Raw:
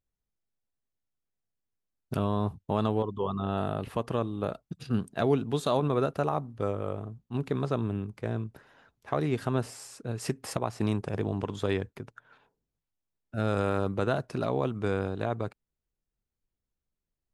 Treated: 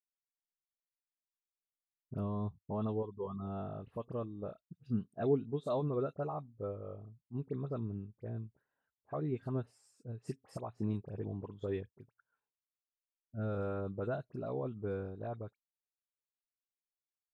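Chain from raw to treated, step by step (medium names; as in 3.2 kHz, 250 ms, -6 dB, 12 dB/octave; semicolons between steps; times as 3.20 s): phase dispersion highs, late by 49 ms, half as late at 2.1 kHz; spectral contrast expander 1.5:1; trim -5 dB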